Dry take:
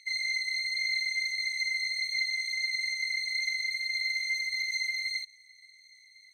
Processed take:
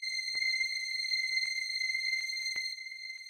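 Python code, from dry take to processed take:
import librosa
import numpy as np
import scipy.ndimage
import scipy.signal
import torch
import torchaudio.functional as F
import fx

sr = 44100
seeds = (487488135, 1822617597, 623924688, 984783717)

y = fx.filter_lfo_highpass(x, sr, shape='square', hz=0.71, low_hz=430.0, high_hz=2500.0, q=0.74)
y = fx.stretch_grains(y, sr, factor=0.52, grain_ms=95.0)
y = y + 10.0 ** (-10.5 / 20.0) * np.pad(y, (int(969 * sr / 1000.0), 0))[:len(y)]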